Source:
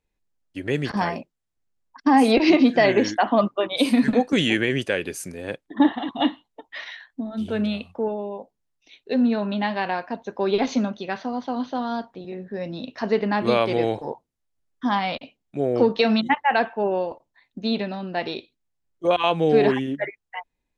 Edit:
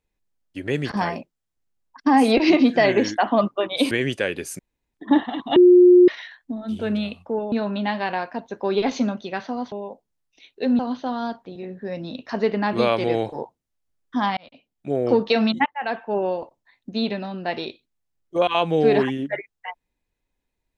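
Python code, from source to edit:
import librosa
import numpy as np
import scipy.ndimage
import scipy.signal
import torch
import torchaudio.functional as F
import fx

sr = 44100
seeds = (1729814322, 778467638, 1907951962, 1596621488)

y = fx.edit(x, sr, fx.cut(start_s=3.91, length_s=0.69),
    fx.room_tone_fill(start_s=5.28, length_s=0.35),
    fx.bleep(start_s=6.25, length_s=0.52, hz=358.0, db=-7.5),
    fx.move(start_s=8.21, length_s=1.07, to_s=11.48),
    fx.fade_in_span(start_s=15.06, length_s=0.54),
    fx.fade_in_from(start_s=16.35, length_s=0.52, floor_db=-17.5), tone=tone)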